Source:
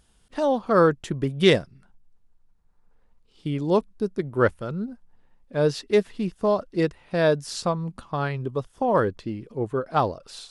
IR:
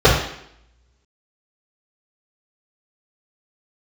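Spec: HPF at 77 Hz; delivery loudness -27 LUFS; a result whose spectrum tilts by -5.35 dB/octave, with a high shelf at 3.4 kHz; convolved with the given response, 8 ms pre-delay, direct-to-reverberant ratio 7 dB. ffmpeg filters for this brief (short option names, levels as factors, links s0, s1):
-filter_complex "[0:a]highpass=77,highshelf=f=3400:g=4,asplit=2[s0][s1];[1:a]atrim=start_sample=2205,adelay=8[s2];[s1][s2]afir=irnorm=-1:irlink=0,volume=0.0188[s3];[s0][s3]amix=inputs=2:normalize=0,volume=0.562"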